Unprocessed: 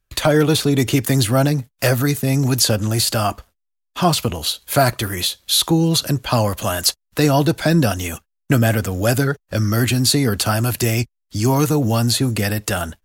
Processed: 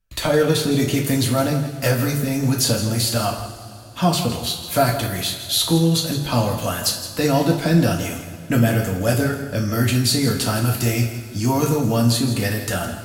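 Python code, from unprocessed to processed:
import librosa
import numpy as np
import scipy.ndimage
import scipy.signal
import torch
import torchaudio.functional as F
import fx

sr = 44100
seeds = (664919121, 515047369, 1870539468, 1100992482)

y = fx.low_shelf(x, sr, hz=190.0, db=4.0)
y = y + 10.0 ** (-12.0 / 20.0) * np.pad(y, (int(164 * sr / 1000.0), 0))[:len(y)]
y = fx.rev_double_slope(y, sr, seeds[0], early_s=0.37, late_s=2.9, knee_db=-17, drr_db=-0.5)
y = F.gain(torch.from_numpy(y), -6.0).numpy()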